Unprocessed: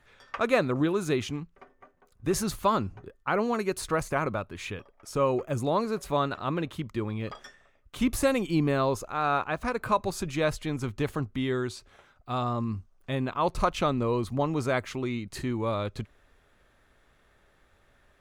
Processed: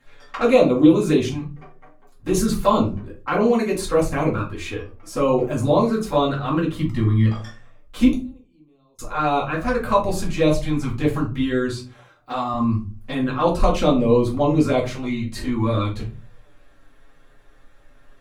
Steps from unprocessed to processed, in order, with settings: 6.76–7.26 comb 1 ms, depth 90%; 11.74–12.54 HPF 270 Hz 6 dB/oct; envelope flanger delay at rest 7.7 ms, full sweep at -22.5 dBFS; 8.11–8.99 flipped gate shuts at -28 dBFS, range -41 dB; shoebox room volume 160 m³, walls furnished, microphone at 2.2 m; gain +4.5 dB

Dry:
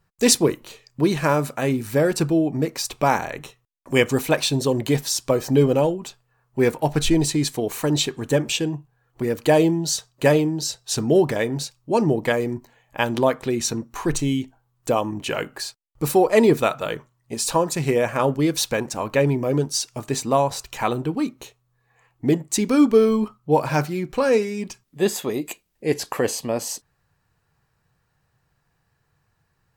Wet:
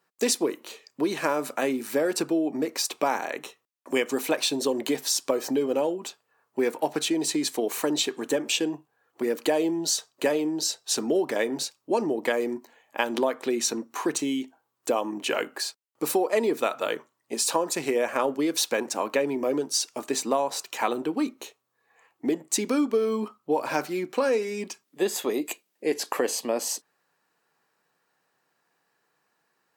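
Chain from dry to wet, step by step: compressor 6:1, threshold -20 dBFS, peak gain reduction 9.5 dB; HPF 250 Hz 24 dB/oct

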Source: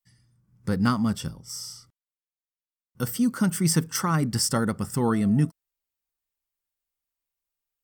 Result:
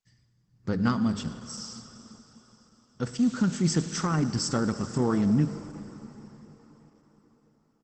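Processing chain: 0.71–1.21 notches 50/100/150/200/250/300/350/400 Hz; echo 0.105 s -23.5 dB; dynamic EQ 340 Hz, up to +4 dB, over -37 dBFS, Q 0.95; in parallel at -12 dB: soft clip -22.5 dBFS, distortion -9 dB; 3.17–4.05 on the sum: added noise blue -36 dBFS; 4.76–5.21 doubler 24 ms -12.5 dB; 6.09–6.3 spectral gain 1700–4500 Hz -24 dB; on a send at -11.5 dB: high shelf 2800 Hz +3.5 dB + reverb RT60 4.6 s, pre-delay 31 ms; on the sum: gain -4.5 dB; Opus 12 kbps 48000 Hz

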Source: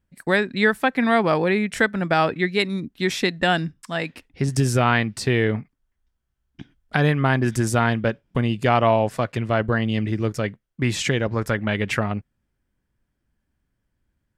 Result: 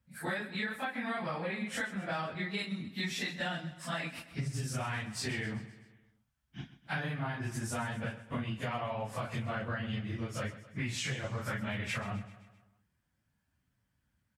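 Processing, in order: phase scrambler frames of 0.1 s; HPF 83 Hz; bell 380 Hz -10.5 dB 0.99 oct; compressor 12:1, threshold -33 dBFS, peak gain reduction 17.5 dB; on a send: feedback echo 0.129 s, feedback 53%, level -15 dB

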